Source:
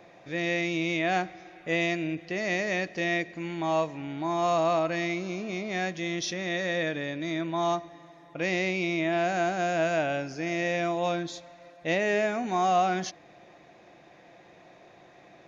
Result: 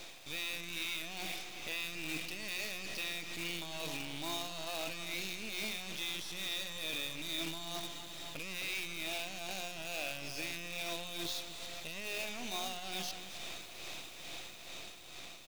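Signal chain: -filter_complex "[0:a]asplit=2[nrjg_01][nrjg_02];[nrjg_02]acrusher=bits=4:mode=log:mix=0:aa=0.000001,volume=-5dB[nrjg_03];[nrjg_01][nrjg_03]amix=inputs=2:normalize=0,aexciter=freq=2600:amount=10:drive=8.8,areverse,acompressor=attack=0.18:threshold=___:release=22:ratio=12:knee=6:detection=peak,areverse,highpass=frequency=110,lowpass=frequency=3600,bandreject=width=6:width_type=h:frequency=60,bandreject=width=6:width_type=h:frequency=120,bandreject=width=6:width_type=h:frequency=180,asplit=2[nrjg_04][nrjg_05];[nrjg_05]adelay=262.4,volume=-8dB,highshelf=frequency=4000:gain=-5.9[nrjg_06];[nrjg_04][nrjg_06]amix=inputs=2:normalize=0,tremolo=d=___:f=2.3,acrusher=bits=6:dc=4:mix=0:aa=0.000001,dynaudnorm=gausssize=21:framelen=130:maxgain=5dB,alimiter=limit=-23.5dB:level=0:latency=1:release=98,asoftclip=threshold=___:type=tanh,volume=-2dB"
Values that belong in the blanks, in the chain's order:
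-23dB, 0.59, -29dB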